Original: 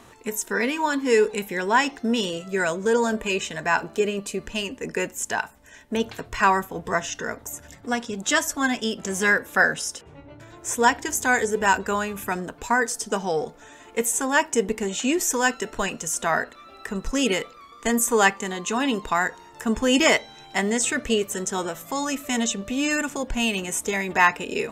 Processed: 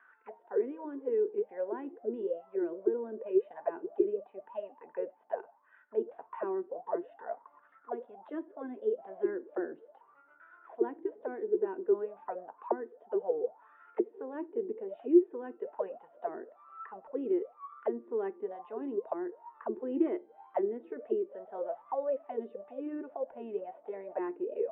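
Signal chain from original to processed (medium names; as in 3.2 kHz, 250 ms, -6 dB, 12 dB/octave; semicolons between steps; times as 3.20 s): auto-wah 350–1600 Hz, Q 16, down, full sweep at -19.5 dBFS; three-band isolator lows -17 dB, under 190 Hz, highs -14 dB, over 2.2 kHz; resampled via 8 kHz; trim +6.5 dB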